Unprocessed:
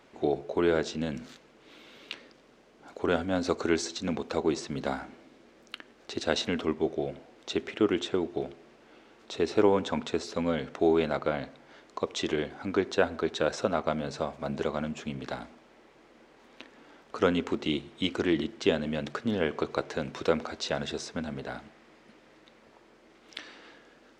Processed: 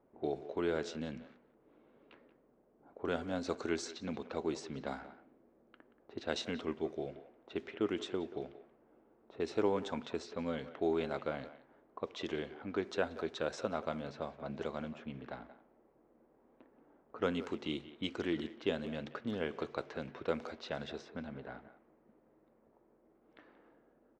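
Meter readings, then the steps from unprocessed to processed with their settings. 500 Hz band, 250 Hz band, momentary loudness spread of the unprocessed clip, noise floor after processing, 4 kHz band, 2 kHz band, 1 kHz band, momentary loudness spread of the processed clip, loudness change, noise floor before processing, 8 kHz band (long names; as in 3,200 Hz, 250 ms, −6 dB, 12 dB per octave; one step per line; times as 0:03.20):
−9.0 dB, −9.0 dB, 17 LU, −69 dBFS, −10.0 dB, −9.0 dB, −9.0 dB, 12 LU, −9.0 dB, −59 dBFS, −11.0 dB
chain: low-pass that shuts in the quiet parts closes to 710 Hz, open at −24.5 dBFS
far-end echo of a speakerphone 180 ms, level −14 dB
level −9 dB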